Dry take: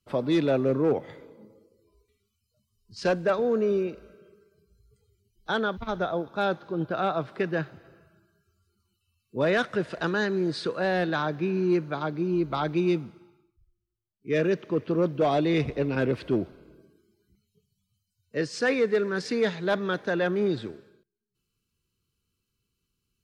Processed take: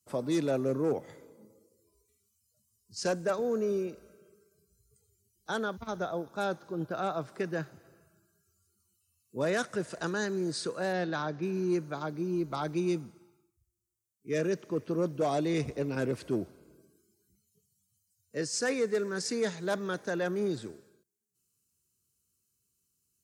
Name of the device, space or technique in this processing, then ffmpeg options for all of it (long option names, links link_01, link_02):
budget condenser microphone: -filter_complex "[0:a]asplit=3[link_01][link_02][link_03];[link_01]afade=type=out:start_time=10.92:duration=0.02[link_04];[link_02]lowpass=frequency=5600:width=0.5412,lowpass=frequency=5600:width=1.3066,afade=type=in:start_time=10.92:duration=0.02,afade=type=out:start_time=11.41:duration=0.02[link_05];[link_03]afade=type=in:start_time=11.41:duration=0.02[link_06];[link_04][link_05][link_06]amix=inputs=3:normalize=0,highpass=85,equalizer=frequency=66:width_type=o:width=0.77:gain=4,highshelf=frequency=5000:width_type=q:width=1.5:gain=13,volume=-5.5dB"